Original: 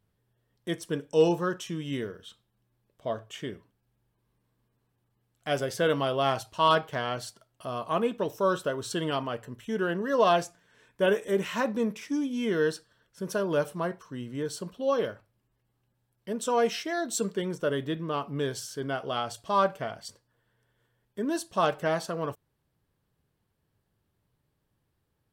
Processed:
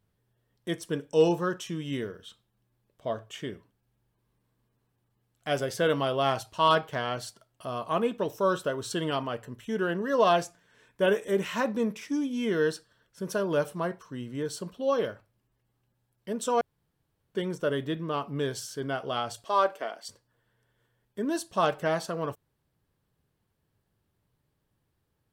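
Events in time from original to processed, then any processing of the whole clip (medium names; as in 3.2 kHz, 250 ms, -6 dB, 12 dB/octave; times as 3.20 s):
16.61–17.35 s: room tone
19.44–20.07 s: high-pass 290 Hz 24 dB/octave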